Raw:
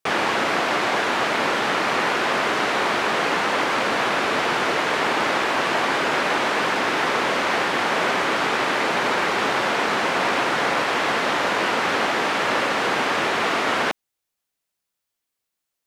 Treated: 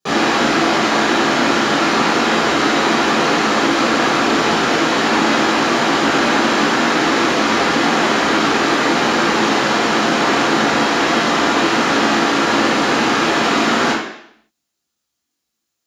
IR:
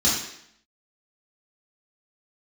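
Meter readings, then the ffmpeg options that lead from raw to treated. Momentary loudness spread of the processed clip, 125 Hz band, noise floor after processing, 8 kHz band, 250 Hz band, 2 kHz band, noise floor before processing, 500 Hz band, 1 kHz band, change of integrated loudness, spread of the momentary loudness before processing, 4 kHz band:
1 LU, +9.5 dB, −76 dBFS, +9.0 dB, +12.5 dB, +4.5 dB, −82 dBFS, +6.0 dB, +5.5 dB, +6.0 dB, 0 LU, +7.0 dB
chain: -filter_complex "[0:a]equalizer=frequency=310:width=4.3:gain=4.5[link_01];[1:a]atrim=start_sample=2205[link_02];[link_01][link_02]afir=irnorm=-1:irlink=0,volume=-9.5dB"

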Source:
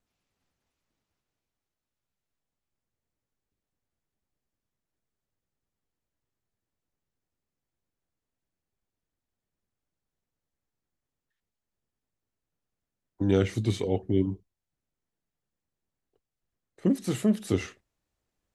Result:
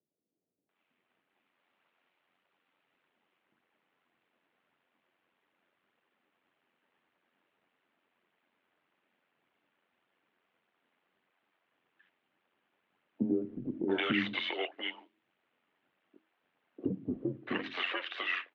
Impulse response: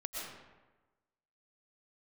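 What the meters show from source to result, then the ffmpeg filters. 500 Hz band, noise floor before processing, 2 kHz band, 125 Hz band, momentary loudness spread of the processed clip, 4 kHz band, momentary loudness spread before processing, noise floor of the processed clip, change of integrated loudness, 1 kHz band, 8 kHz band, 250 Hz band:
−7.5 dB, below −85 dBFS, +9.5 dB, −15.5 dB, 8 LU, +6.5 dB, 7 LU, −82 dBFS, −7.0 dB, +2.5 dB, below −25 dB, −7.0 dB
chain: -filter_complex "[0:a]lowshelf=frequency=440:gain=-7.5,bandreject=frequency=50:width_type=h:width=6,bandreject=frequency=100:width_type=h:width=6,bandreject=frequency=150:width_type=h:width=6,bandreject=frequency=200:width_type=h:width=6,bandreject=frequency=250:width_type=h:width=6,bandreject=frequency=300:width_type=h:width=6,bandreject=frequency=350:width_type=h:width=6,bandreject=frequency=400:width_type=h:width=6,acrossover=split=1600[link_01][link_02];[link_01]acompressor=threshold=-44dB:ratio=6[link_03];[link_02]alimiter=level_in=14.5dB:limit=-24dB:level=0:latency=1:release=58,volume=-14.5dB[link_04];[link_03][link_04]amix=inputs=2:normalize=0,dynaudnorm=framelen=340:gausssize=7:maxgain=12dB,aphaser=in_gain=1:out_gain=1:delay=3.3:decay=0.31:speed=1.7:type=triangular,asplit=2[link_05][link_06];[link_06]asoftclip=type=tanh:threshold=-32.5dB,volume=-4dB[link_07];[link_05][link_07]amix=inputs=2:normalize=0,tremolo=f=89:d=0.519,highpass=frequency=300:width_type=q:width=0.5412,highpass=frequency=300:width_type=q:width=1.307,lowpass=frequency=3200:width_type=q:width=0.5176,lowpass=frequency=3200:width_type=q:width=0.7071,lowpass=frequency=3200:width_type=q:width=1.932,afreqshift=-82,acrossover=split=470[link_08][link_09];[link_09]adelay=690[link_10];[link_08][link_10]amix=inputs=2:normalize=0,volume=5dB"

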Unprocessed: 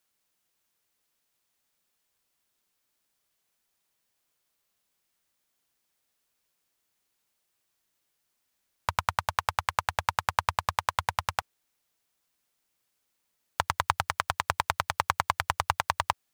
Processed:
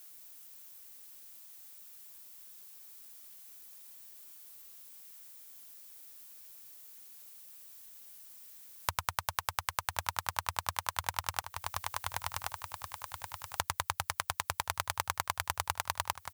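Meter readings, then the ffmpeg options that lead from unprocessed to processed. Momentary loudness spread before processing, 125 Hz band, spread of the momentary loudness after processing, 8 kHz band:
4 LU, −5.5 dB, 14 LU, +2.0 dB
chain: -filter_complex "[0:a]aemphasis=mode=production:type=50kf,alimiter=limit=-5.5dB:level=0:latency=1:release=16,asplit=2[link_01][link_02];[link_02]aecho=0:1:1077|2154|3231:0.141|0.0579|0.0237[link_03];[link_01][link_03]amix=inputs=2:normalize=0,acompressor=threshold=-41dB:ratio=10,volume=12.5dB"

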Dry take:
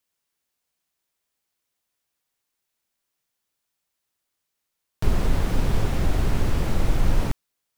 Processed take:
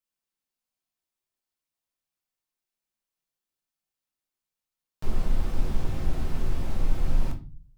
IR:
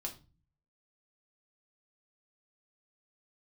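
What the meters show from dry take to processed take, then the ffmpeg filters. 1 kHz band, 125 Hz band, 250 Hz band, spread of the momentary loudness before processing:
−9.0 dB, −7.0 dB, −7.5 dB, 4 LU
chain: -filter_complex "[1:a]atrim=start_sample=2205[link_01];[0:a][link_01]afir=irnorm=-1:irlink=0,volume=-8.5dB"

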